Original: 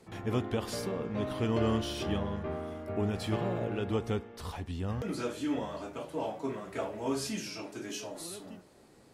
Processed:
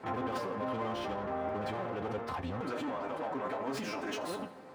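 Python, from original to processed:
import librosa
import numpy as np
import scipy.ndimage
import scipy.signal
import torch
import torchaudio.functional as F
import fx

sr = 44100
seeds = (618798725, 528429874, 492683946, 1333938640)

p1 = np.where(x < 0.0, 10.0 ** (-12.0 / 20.0) * x, x)
p2 = fx.peak_eq(p1, sr, hz=9900.0, db=-10.5, octaves=2.2)
p3 = np.clip(p2, -10.0 ** (-33.0 / 20.0), 10.0 ** (-33.0 / 20.0))
p4 = fx.peak_eq(p3, sr, hz=1000.0, db=11.0, octaves=2.8)
p5 = fx.over_compress(p4, sr, threshold_db=-40.0, ratio=-0.5)
p6 = p4 + (p5 * librosa.db_to_amplitude(1.0))
p7 = fx.comb_fb(p6, sr, f0_hz=260.0, decay_s=0.2, harmonics='all', damping=0.0, mix_pct=70)
p8 = fx.stretch_vocoder(p7, sr, factor=0.52)
p9 = scipy.signal.sosfilt(scipy.signal.butter(2, 76.0, 'highpass', fs=sr, output='sos'), p8)
p10 = p9 + fx.echo_feedback(p9, sr, ms=82, feedback_pct=52, wet_db=-17.5, dry=0)
y = p10 * librosa.db_to_amplitude(4.5)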